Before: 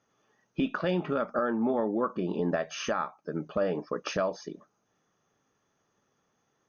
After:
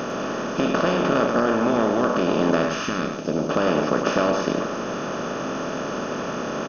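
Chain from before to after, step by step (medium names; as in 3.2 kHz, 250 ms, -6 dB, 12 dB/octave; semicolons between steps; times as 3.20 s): spectral levelling over time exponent 0.2; 2.69–3.49 s: peaking EQ 420 Hz -> 2 kHz -11.5 dB 1.5 oct; delay 103 ms -7 dB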